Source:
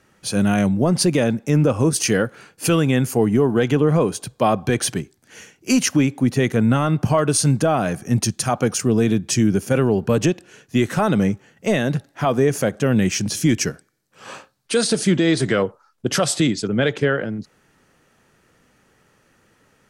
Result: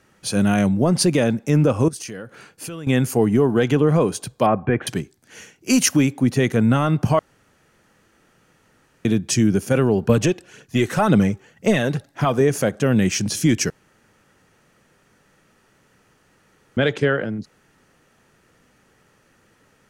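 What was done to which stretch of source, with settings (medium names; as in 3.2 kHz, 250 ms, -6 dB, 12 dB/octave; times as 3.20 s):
1.88–2.87 s: compression 5:1, threshold -31 dBFS
4.46–4.87 s: inverse Chebyshev low-pass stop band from 4.5 kHz
5.73–6.13 s: treble shelf 9.4 kHz +10.5 dB
7.19–9.05 s: room tone
10.09–12.41 s: phaser 1.9 Hz, delay 2.8 ms, feedback 39%
13.70–16.77 s: room tone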